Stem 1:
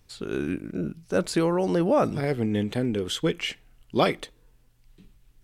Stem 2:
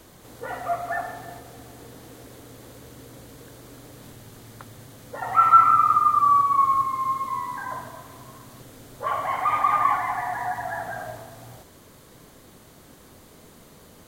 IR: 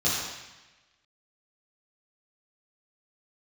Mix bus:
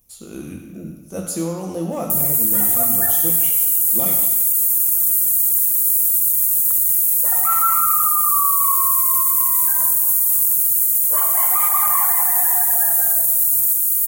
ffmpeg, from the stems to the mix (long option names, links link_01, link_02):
-filter_complex "[0:a]equalizer=frequency=400:width_type=o:width=0.33:gain=-9,equalizer=frequency=1600:width_type=o:width=0.33:gain=-8,equalizer=frequency=8000:width_type=o:width=0.33:gain=-11,asoftclip=type=hard:threshold=-16dB,volume=-6dB,asplit=2[link_01][link_02];[link_02]volume=-12.5dB[link_03];[1:a]aemphasis=mode=production:type=75fm,adelay=2100,volume=0.5dB[link_04];[2:a]atrim=start_sample=2205[link_05];[link_03][link_05]afir=irnorm=-1:irlink=0[link_06];[link_01][link_04][link_06]amix=inputs=3:normalize=0,aexciter=amount=13.9:drive=3.7:freq=6700,alimiter=limit=-6.5dB:level=0:latency=1:release=29"